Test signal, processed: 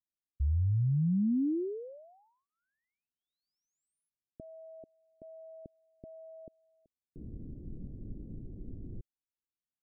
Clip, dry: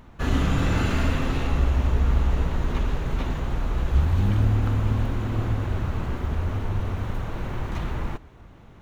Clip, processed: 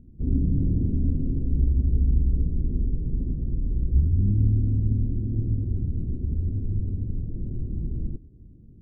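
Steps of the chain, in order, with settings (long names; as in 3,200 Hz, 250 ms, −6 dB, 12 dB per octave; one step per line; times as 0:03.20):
inverse Chebyshev low-pass filter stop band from 1,100 Hz, stop band 60 dB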